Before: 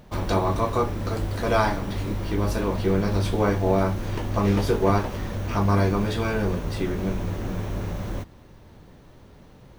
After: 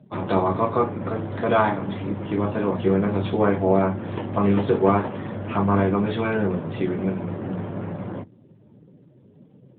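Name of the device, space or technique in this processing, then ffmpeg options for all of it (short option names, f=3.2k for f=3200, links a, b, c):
mobile call with aggressive noise cancelling: -af "highpass=f=110:w=0.5412,highpass=f=110:w=1.3066,afftdn=nr=17:nf=-45,volume=3dB" -ar 8000 -c:a libopencore_amrnb -b:a 12200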